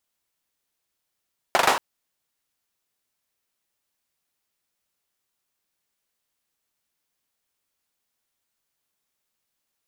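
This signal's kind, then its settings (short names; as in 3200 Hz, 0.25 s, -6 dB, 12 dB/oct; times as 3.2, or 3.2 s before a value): hand clap length 0.23 s, apart 41 ms, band 860 Hz, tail 0.40 s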